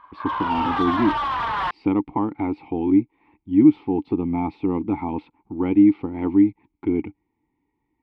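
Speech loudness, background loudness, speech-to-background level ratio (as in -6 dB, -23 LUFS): -22.0 LUFS, -25.0 LUFS, 3.0 dB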